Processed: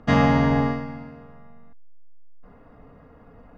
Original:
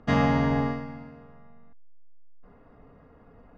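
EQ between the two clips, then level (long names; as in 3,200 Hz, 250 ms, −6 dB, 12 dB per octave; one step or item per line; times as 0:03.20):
notch filter 390 Hz, Q 12
+4.5 dB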